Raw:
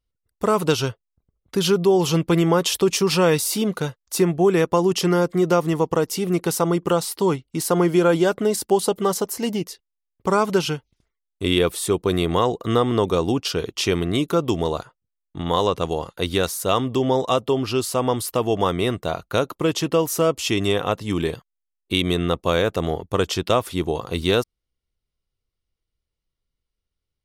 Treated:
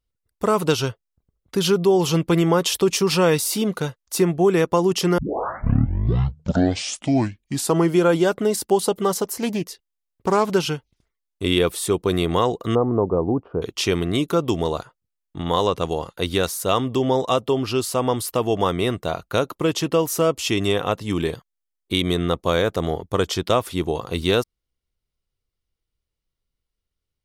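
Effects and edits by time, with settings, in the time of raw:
5.18 tape start 2.76 s
9.23–10.54 Doppler distortion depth 0.18 ms
12.75–13.62 LPF 1000 Hz 24 dB/oct
21.3–23.52 notch 2700 Hz

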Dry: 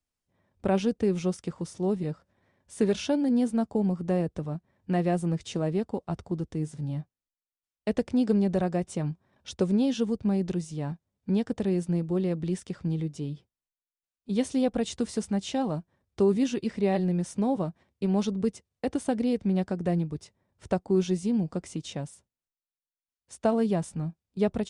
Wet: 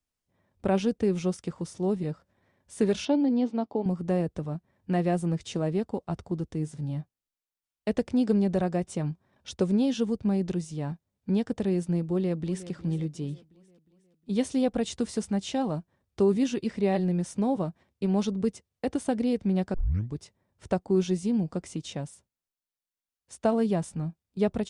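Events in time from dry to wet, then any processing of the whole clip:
3.05–3.86 speaker cabinet 180–4800 Hz, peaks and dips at 190 Hz -10 dB, 280 Hz +4 dB, 870 Hz +3 dB, 1600 Hz -8 dB
12.04–12.7 echo throw 0.36 s, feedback 50%, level -15 dB
19.74 tape start 0.41 s

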